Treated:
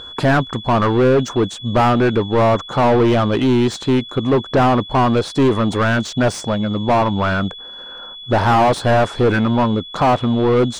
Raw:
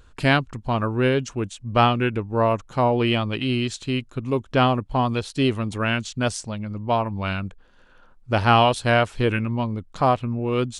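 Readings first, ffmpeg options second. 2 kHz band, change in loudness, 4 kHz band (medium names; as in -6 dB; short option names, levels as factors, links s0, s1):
+3.5 dB, +6.0 dB, +3.0 dB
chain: -filter_complex "[0:a]aeval=exprs='val(0)+0.01*sin(2*PI*3400*n/s)':c=same,equalizer=f=2600:t=o:w=0.89:g=-10.5,asplit=2[s0][s1];[s1]highpass=f=720:p=1,volume=31.6,asoftclip=type=tanh:threshold=0.562[s2];[s0][s2]amix=inputs=2:normalize=0,lowpass=f=1100:p=1,volume=0.501"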